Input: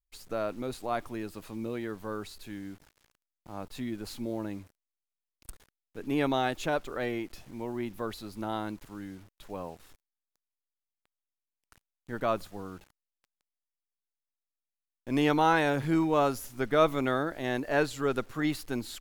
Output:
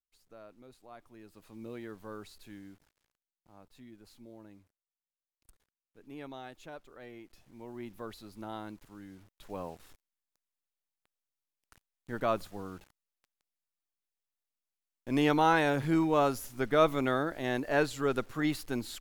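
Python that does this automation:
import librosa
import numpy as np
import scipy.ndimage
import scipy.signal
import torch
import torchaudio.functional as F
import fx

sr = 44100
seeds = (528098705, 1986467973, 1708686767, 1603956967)

y = fx.gain(x, sr, db=fx.line((1.0, -19.5), (1.71, -7.5), (2.54, -7.5), (3.64, -17.0), (7.01, -17.0), (7.88, -7.5), (9.07, -7.5), (9.58, -1.0)))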